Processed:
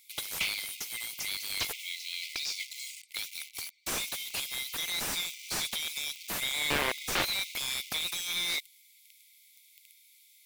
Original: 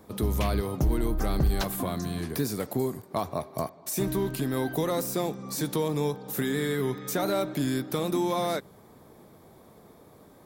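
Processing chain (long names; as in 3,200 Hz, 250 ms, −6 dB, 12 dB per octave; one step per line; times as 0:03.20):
0:01.71–0:03.07: low-pass filter 3,200 Hz → 8,700 Hz 24 dB per octave
in parallel at −4 dB: bit reduction 7 bits
0:06.70–0:07.25: on the sum: wrap-around overflow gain 18.5 dB
linear-phase brick-wall high-pass 2,000 Hz
slew-rate limiting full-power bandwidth 85 Hz
level +6 dB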